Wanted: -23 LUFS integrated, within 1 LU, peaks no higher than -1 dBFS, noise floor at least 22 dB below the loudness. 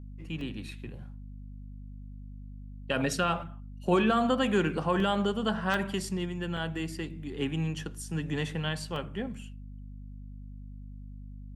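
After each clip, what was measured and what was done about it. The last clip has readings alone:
dropouts 5; longest dropout 1.8 ms; hum 50 Hz; highest harmonic 250 Hz; hum level -40 dBFS; loudness -30.5 LUFS; peak level -14.0 dBFS; loudness target -23.0 LUFS
-> interpolate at 0.41/5.00/5.74/6.57/8.96 s, 1.8 ms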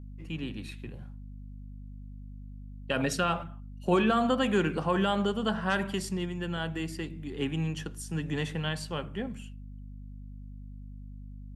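dropouts 0; hum 50 Hz; highest harmonic 250 Hz; hum level -40 dBFS
-> hum notches 50/100/150/200/250 Hz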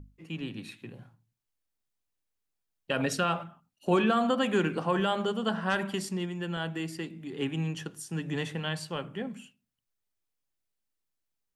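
hum not found; loudness -31.0 LUFS; peak level -14.5 dBFS; loudness target -23.0 LUFS
-> trim +8 dB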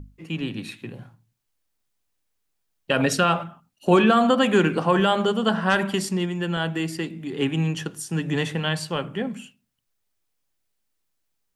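loudness -23.0 LUFS; peak level -6.5 dBFS; noise floor -75 dBFS

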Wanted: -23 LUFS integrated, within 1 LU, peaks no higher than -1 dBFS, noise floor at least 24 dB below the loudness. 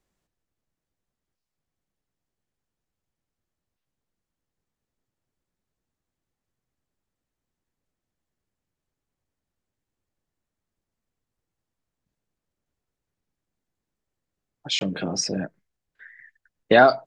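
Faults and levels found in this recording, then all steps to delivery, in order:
dropouts 1; longest dropout 21 ms; loudness -22.0 LUFS; peak level -2.5 dBFS; loudness target -23.0 LUFS
-> interpolate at 14.79 s, 21 ms; trim -1 dB

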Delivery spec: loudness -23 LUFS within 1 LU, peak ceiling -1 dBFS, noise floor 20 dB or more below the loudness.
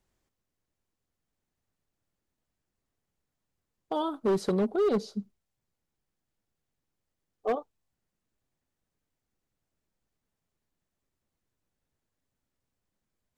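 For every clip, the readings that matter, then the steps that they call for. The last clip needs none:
clipped samples 0.8%; clipping level -21.5 dBFS; loudness -29.5 LUFS; peak level -21.5 dBFS; loudness target -23.0 LUFS
-> clip repair -21.5 dBFS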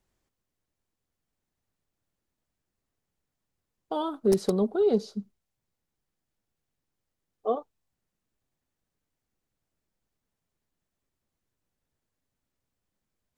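clipped samples 0.0%; loudness -27.5 LUFS; peak level -12.5 dBFS; loudness target -23.0 LUFS
-> trim +4.5 dB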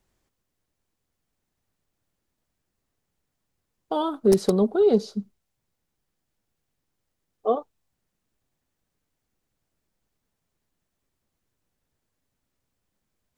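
loudness -23.0 LUFS; peak level -8.0 dBFS; noise floor -80 dBFS

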